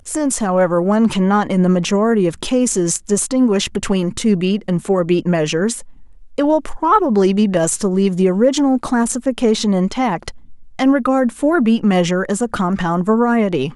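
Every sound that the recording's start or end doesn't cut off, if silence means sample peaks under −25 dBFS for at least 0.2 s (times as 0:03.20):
0:06.38–0:10.30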